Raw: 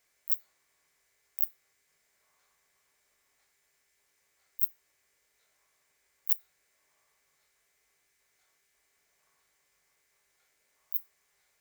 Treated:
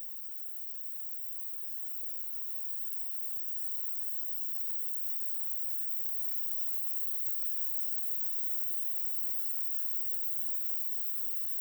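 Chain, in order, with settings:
spectral dynamics exaggerated over time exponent 3
extreme stretch with random phases 30×, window 1.00 s, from 0:06.03
level +3.5 dB

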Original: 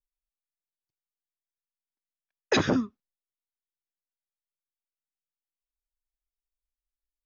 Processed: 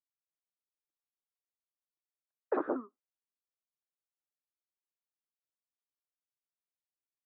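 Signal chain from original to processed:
Chebyshev band-pass filter 310–1,300 Hz, order 3
level −5 dB

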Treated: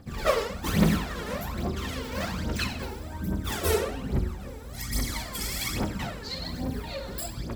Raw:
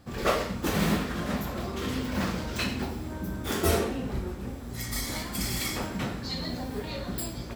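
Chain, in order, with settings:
phase shifter 1.2 Hz, delay 2.4 ms, feedback 68%
hum removal 60.05 Hz, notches 28
level −2.5 dB

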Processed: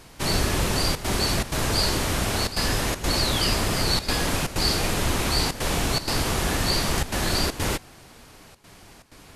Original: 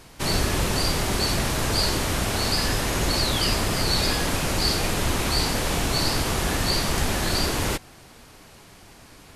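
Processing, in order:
gate pattern "xxxxxxxxxx.xxxx." 158 BPM −12 dB

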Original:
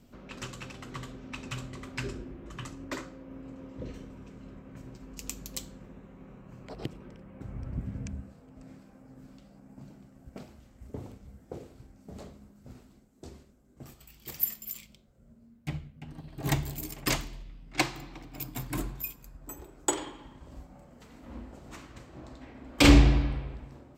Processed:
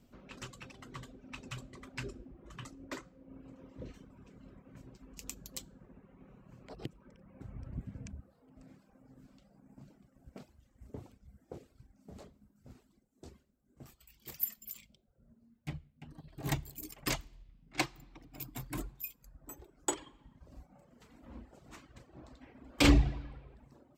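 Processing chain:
reverb reduction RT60 0.88 s
level −5.5 dB

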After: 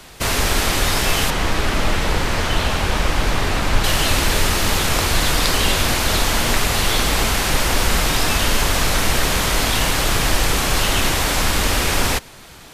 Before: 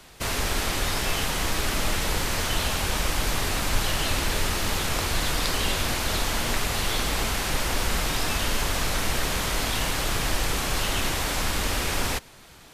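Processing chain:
0:01.30–0:03.84: low-pass filter 2,900 Hz 6 dB per octave
level +8 dB

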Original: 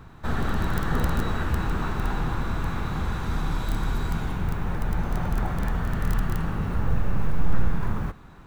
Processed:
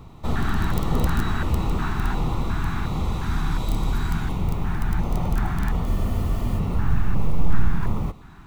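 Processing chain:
auto-filter notch square 1.4 Hz 520–1,600 Hz
frozen spectrum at 0:05.88, 0.71 s
level +3 dB

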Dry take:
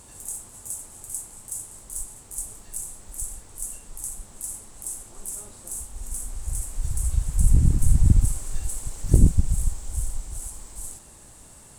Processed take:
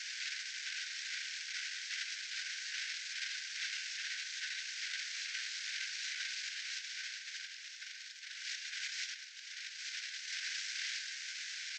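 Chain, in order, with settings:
variable-slope delta modulation 32 kbit/s
downward compressor 16 to 1, threshold −30 dBFS, peak gain reduction 22.5 dB
Chebyshev high-pass with heavy ripple 1,500 Hz, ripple 3 dB
single-tap delay 957 ms −11.5 dB
level +14 dB

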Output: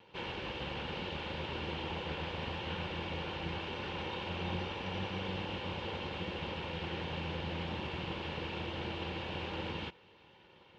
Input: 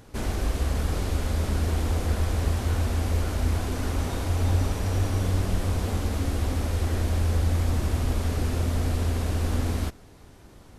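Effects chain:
lower of the sound and its delayed copy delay 2.2 ms
loudspeaker in its box 240–3,400 Hz, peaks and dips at 280 Hz −10 dB, 420 Hz −9 dB, 670 Hz −9 dB, 1,300 Hz −9 dB, 1,900 Hz −5 dB, 2,900 Hz +7 dB

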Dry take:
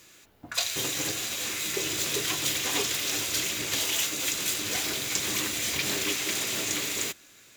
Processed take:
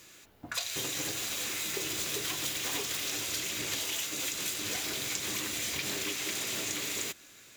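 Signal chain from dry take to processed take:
0:01.02–0:03.09: one scale factor per block 3 bits
downward compressor, threshold −31 dBFS, peak gain reduction 9 dB

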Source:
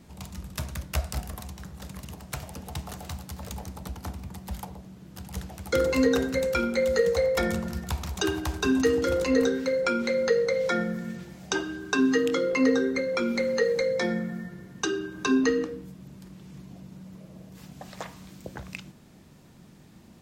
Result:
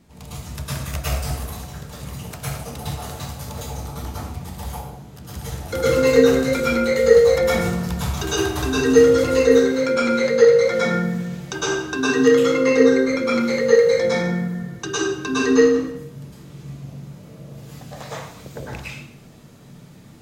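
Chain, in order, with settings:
dense smooth reverb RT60 0.69 s, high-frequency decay 0.85×, pre-delay 95 ms, DRR −9.5 dB
level −2.5 dB

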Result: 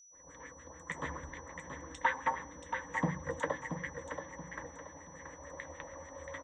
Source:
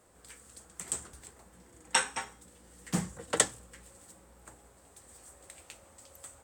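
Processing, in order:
EQ curve with evenly spaced ripples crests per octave 1.1, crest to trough 12 dB
multiband delay without the direct sound highs, lows 100 ms, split 5,700 Hz
downward compressor 8 to 1, threshold −35 dBFS, peak gain reduction 15 dB
auto-filter low-pass sine 6.8 Hz 770–2,200 Hz
downward expander −53 dBFS
on a send: repeating echo 679 ms, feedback 35%, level −7.5 dB
on the sum: steady tone 5,900 Hz −62 dBFS
level +5.5 dB

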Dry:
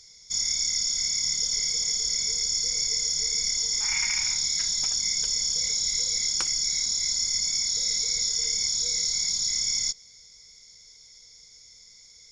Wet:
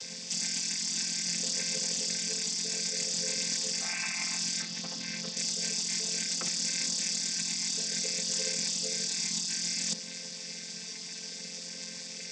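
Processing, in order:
channel vocoder with a chord as carrier major triad, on F3
brickwall limiter −20 dBFS, peak gain reduction 10 dB
compressor whose output falls as the input rises −38 dBFS, ratio −1
0:04.62–0:05.37: high-frequency loss of the air 120 metres
level +5.5 dB

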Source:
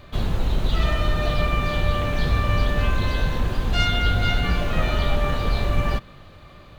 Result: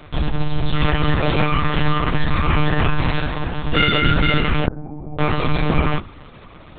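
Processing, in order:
0:01.53–0:02.37: comb filter 6.1 ms, depth 47%
0:03.19–0:03.68: low-shelf EQ 130 Hz −6.5 dB
0:04.66–0:05.19: formant resonators in series u
hum removal 62.83 Hz, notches 25
one-pitch LPC vocoder at 8 kHz 150 Hz
level +4 dB

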